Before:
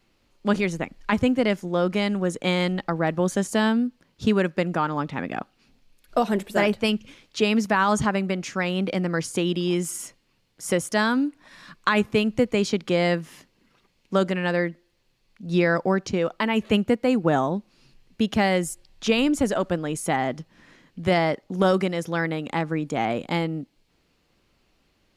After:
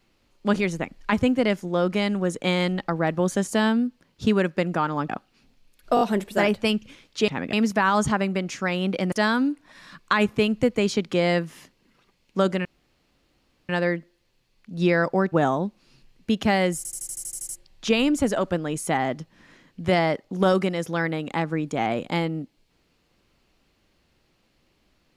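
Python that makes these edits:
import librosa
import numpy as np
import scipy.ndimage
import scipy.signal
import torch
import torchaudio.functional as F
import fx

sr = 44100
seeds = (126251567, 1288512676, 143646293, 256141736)

y = fx.edit(x, sr, fx.move(start_s=5.09, length_s=0.25, to_s=7.47),
    fx.stutter(start_s=6.2, slice_s=0.02, count=4),
    fx.cut(start_s=9.06, length_s=1.82),
    fx.insert_room_tone(at_s=14.41, length_s=1.04),
    fx.cut(start_s=16.04, length_s=1.19),
    fx.stutter(start_s=18.68, slice_s=0.08, count=10), tone=tone)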